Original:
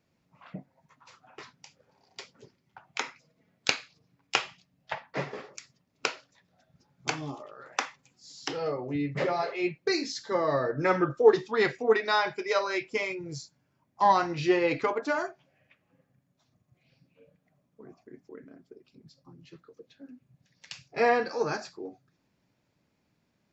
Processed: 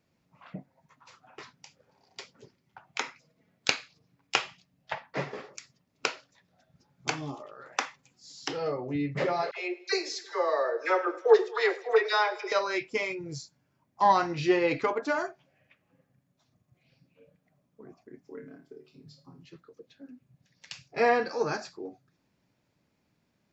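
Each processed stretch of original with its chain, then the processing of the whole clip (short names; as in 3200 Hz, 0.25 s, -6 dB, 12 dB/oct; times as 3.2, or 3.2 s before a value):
9.51–12.52 steep high-pass 380 Hz 48 dB/oct + dispersion lows, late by 61 ms, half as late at 1200 Hz + feedback echo 0.105 s, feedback 59%, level -20 dB
18.25–19.43 comb 7.2 ms, depth 51% + flutter echo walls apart 4.6 m, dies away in 0.28 s
whole clip: dry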